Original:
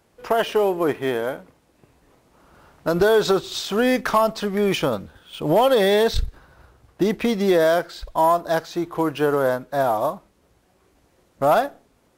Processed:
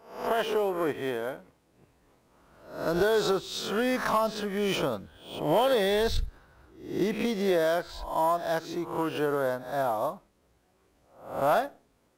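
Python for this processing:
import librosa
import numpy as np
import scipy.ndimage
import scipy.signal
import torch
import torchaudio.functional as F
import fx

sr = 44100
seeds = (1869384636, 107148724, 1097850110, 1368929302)

y = fx.spec_swells(x, sr, rise_s=0.55)
y = F.gain(torch.from_numpy(y), -8.5).numpy()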